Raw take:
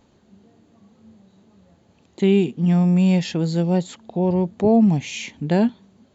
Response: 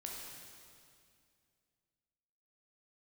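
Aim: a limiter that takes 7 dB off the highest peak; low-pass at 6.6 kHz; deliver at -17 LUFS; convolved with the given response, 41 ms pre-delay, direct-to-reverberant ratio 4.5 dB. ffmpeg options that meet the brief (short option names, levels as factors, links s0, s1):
-filter_complex "[0:a]lowpass=6600,alimiter=limit=0.188:level=0:latency=1,asplit=2[s0][s1];[1:a]atrim=start_sample=2205,adelay=41[s2];[s1][s2]afir=irnorm=-1:irlink=0,volume=0.708[s3];[s0][s3]amix=inputs=2:normalize=0,volume=1.68"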